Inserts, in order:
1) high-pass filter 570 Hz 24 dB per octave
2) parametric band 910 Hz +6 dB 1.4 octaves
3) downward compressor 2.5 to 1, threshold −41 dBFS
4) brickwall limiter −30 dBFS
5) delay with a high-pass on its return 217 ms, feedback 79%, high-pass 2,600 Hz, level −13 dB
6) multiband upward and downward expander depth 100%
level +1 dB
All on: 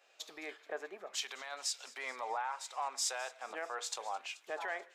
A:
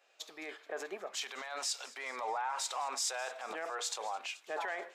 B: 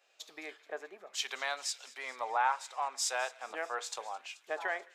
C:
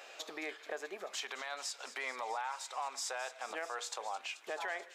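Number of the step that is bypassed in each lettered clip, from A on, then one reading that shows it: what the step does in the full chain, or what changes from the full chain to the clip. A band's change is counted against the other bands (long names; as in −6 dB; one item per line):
3, average gain reduction 10.5 dB
4, change in momentary loudness spread +4 LU
6, 8 kHz band −4.0 dB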